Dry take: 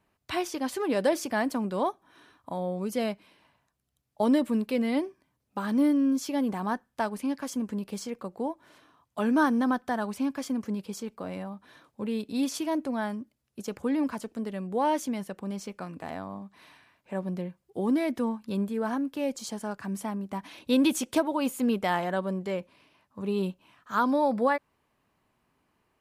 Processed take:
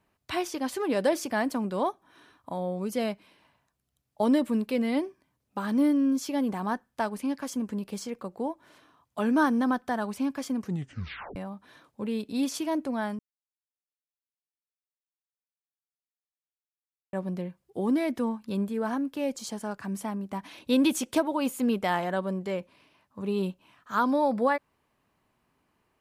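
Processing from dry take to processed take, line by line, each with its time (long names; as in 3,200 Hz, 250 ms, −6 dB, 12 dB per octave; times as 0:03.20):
0:10.62: tape stop 0.74 s
0:13.19–0:17.13: silence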